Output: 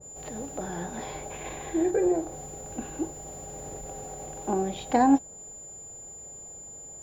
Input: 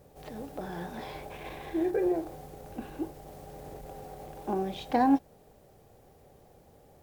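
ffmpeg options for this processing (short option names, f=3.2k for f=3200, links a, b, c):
-af "highshelf=f=9.2k:g=-8,aeval=exprs='val(0)+0.00562*sin(2*PI*7100*n/s)':c=same,adynamicequalizer=threshold=0.00631:dfrequency=1500:dqfactor=0.7:tfrequency=1500:tqfactor=0.7:attack=5:release=100:ratio=0.375:range=2:mode=cutabove:tftype=highshelf,volume=3.5dB"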